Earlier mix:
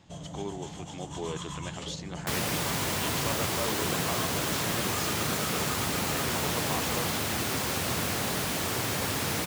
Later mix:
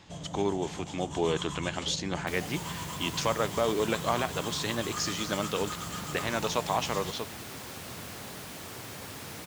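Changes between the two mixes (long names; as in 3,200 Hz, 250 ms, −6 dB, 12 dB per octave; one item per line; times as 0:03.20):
speech +8.0 dB
second sound −12.0 dB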